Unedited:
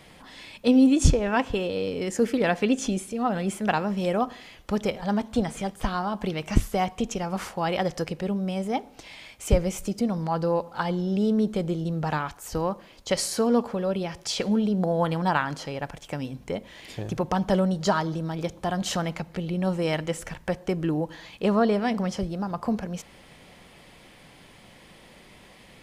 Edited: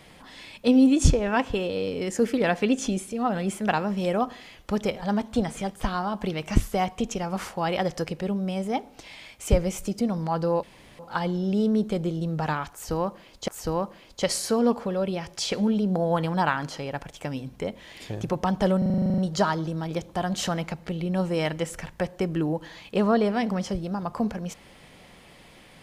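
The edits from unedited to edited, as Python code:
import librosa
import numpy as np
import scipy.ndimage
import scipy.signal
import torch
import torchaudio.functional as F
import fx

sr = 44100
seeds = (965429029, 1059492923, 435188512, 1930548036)

y = fx.edit(x, sr, fx.insert_room_tone(at_s=10.63, length_s=0.36),
    fx.repeat(start_s=12.36, length_s=0.76, count=2),
    fx.stutter(start_s=17.66, slice_s=0.04, count=11), tone=tone)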